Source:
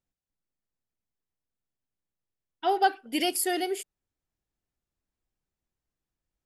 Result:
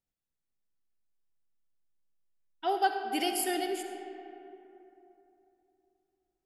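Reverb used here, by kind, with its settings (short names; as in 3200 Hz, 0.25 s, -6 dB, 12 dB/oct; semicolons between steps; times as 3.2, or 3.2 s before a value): digital reverb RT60 3.2 s, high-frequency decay 0.45×, pre-delay 25 ms, DRR 5 dB; gain -4.5 dB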